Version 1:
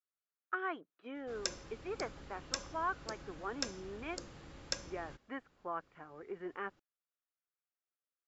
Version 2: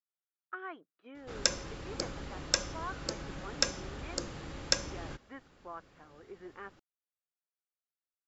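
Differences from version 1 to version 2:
speech -5.0 dB; background +9.5 dB

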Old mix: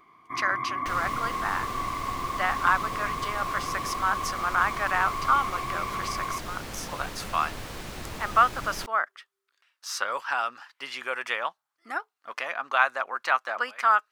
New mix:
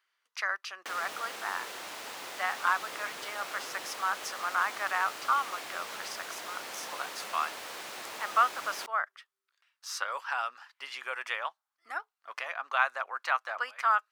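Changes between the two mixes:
speech -4.5 dB; first sound: muted; master: add high-pass 570 Hz 12 dB/octave

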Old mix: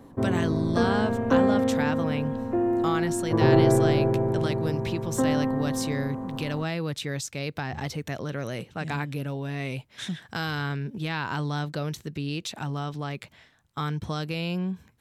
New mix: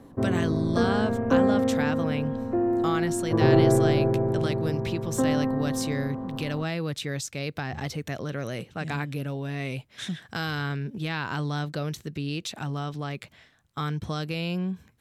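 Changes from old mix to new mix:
background: add low-pass 2 kHz 12 dB/octave; master: add peaking EQ 920 Hz -4 dB 0.23 oct

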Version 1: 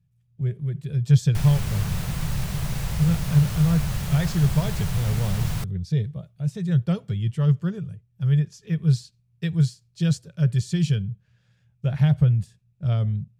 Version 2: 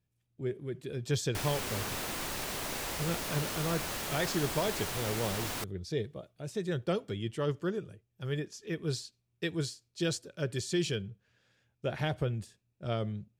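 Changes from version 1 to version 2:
background: add bass shelf 180 Hz -9.5 dB; master: add resonant low shelf 210 Hz -10.5 dB, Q 3

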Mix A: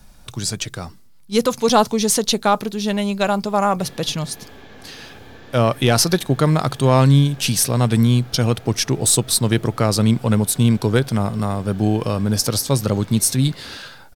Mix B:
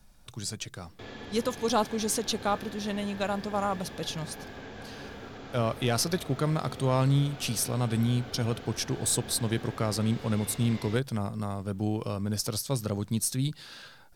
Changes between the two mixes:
speech -11.5 dB; background: entry -2.80 s

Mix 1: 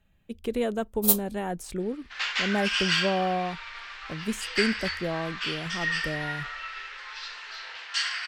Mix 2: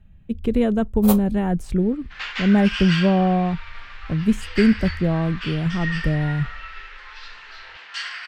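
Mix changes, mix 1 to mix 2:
speech +3.5 dB; first sound: add high-order bell 1 kHz +10 dB 2.9 oct; master: add tone controls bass +15 dB, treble -8 dB

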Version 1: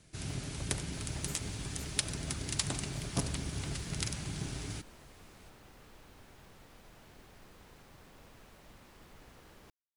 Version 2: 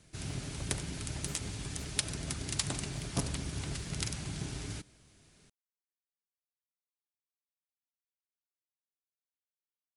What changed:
speech: add amplifier tone stack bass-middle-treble 5-5-5; second sound: muted

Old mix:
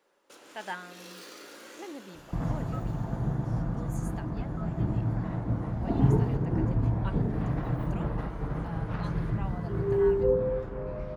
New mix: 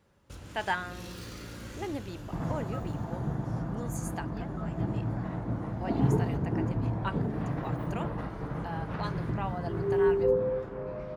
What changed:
speech +7.0 dB; first sound: remove high-pass 340 Hz 24 dB/octave; master: add high-pass 140 Hz 6 dB/octave

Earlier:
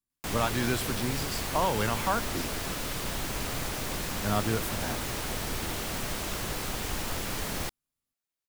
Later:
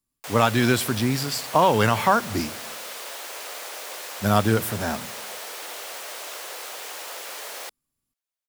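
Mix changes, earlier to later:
speech +9.5 dB; background: add Chebyshev high-pass 500 Hz, order 3

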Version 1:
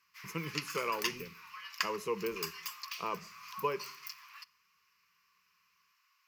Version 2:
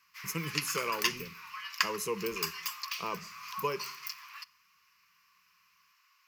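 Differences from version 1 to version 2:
speech: add tone controls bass +4 dB, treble +14 dB; background +5.0 dB

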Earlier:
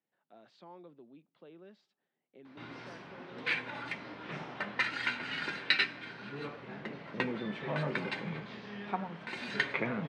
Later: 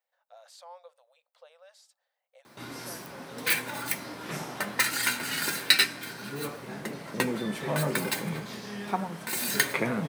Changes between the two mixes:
speech: add brick-wall FIR high-pass 480 Hz; master: remove four-pole ladder low-pass 3.9 kHz, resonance 25%

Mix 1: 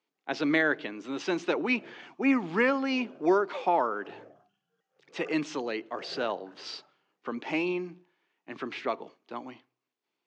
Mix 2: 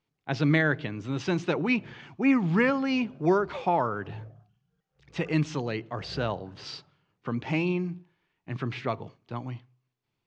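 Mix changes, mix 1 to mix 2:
background -5.0 dB; master: remove high-pass 260 Hz 24 dB/octave

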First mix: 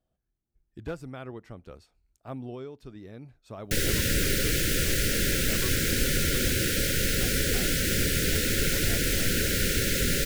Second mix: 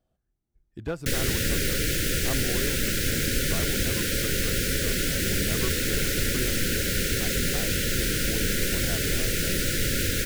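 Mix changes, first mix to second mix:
speech +4.0 dB; background: entry -2.65 s

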